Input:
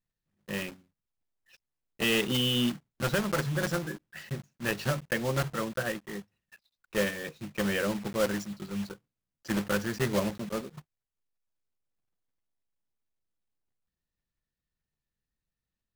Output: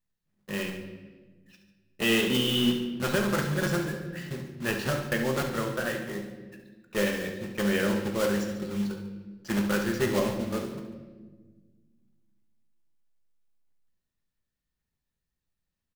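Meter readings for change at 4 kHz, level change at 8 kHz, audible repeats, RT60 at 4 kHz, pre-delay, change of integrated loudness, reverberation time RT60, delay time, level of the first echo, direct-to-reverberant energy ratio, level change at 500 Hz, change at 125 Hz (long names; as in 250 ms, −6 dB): +1.5 dB, +1.5 dB, 2, 1.0 s, 5 ms, +2.5 dB, 1.4 s, 70 ms, −10.5 dB, 3.0 dB, +3.0 dB, +1.0 dB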